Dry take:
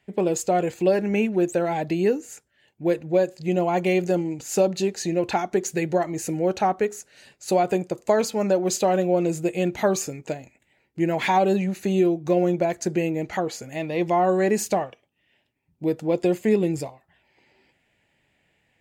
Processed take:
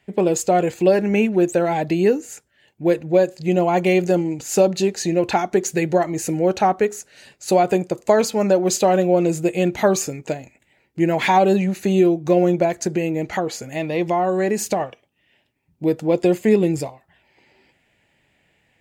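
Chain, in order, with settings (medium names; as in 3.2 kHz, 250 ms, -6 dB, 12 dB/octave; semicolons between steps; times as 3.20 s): 12.67–14.80 s: compression 3:1, threshold -22 dBFS, peak gain reduction 5 dB; trim +4.5 dB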